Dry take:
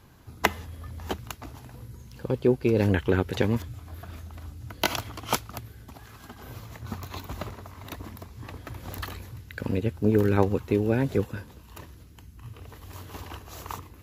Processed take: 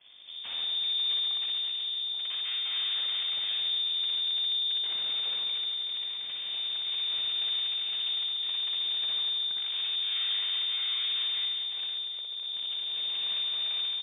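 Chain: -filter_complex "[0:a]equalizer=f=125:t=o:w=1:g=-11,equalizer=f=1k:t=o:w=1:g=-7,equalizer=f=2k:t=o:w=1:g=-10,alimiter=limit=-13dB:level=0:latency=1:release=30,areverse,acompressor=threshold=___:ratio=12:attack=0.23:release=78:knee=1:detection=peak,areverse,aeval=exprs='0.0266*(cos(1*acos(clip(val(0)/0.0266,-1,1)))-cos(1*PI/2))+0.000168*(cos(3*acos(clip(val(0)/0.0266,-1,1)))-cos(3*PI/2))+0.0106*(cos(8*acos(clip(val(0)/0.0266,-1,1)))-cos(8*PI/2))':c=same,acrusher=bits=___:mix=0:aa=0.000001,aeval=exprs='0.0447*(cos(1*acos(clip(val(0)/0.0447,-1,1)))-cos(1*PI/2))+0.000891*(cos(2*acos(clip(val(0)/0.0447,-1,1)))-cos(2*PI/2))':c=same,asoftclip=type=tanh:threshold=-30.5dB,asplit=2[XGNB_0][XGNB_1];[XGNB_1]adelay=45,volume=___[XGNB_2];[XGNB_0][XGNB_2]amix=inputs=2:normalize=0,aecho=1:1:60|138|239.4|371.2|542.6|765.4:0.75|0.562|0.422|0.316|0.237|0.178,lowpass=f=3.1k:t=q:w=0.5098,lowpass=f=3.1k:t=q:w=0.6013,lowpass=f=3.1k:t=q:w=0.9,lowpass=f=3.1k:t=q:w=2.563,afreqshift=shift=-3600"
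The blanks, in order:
-37dB, 10, -13.5dB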